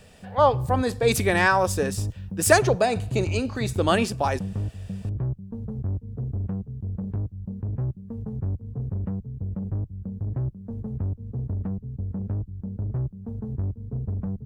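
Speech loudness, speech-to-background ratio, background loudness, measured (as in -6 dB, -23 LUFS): -23.0 LUFS, 8.5 dB, -31.5 LUFS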